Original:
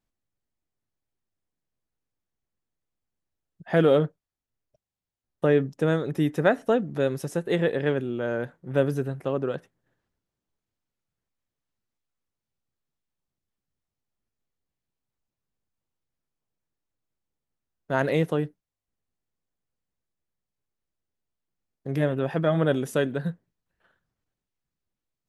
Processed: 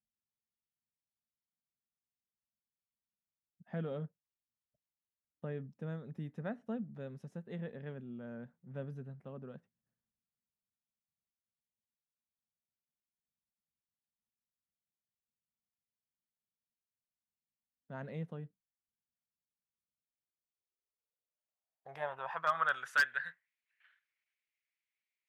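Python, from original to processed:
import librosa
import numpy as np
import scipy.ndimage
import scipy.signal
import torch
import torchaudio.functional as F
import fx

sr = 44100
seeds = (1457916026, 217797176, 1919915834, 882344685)

y = fx.tone_stack(x, sr, knobs='10-0-10')
y = fx.filter_sweep_bandpass(y, sr, from_hz=230.0, to_hz=2200.0, start_s=19.98, end_s=23.56, q=5.3)
y = 10.0 ** (-36.0 / 20.0) * (np.abs((y / 10.0 ** (-36.0 / 20.0) + 3.0) % 4.0 - 2.0) - 1.0)
y = y * librosa.db_to_amplitude(15.0)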